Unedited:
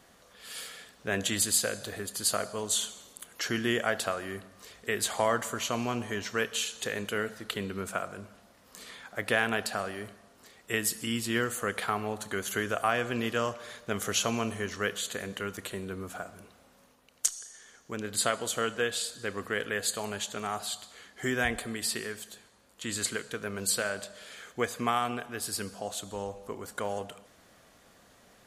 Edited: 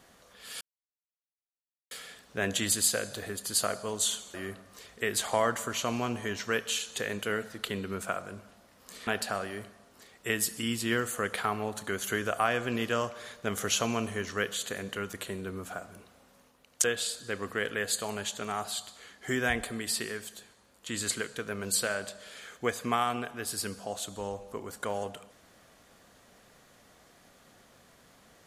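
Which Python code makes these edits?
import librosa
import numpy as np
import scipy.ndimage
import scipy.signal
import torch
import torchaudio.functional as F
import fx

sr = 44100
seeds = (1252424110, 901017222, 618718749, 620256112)

y = fx.edit(x, sr, fx.insert_silence(at_s=0.61, length_s=1.3),
    fx.cut(start_s=3.04, length_s=1.16),
    fx.cut(start_s=8.93, length_s=0.58),
    fx.cut(start_s=17.28, length_s=1.51), tone=tone)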